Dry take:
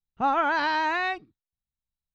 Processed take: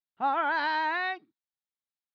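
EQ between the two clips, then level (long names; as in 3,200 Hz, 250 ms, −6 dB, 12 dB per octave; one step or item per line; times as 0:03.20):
loudspeaker in its box 360–4,300 Hz, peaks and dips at 460 Hz −9 dB, 670 Hz −3 dB, 1,200 Hz −5 dB, 2,600 Hz −6 dB
−1.0 dB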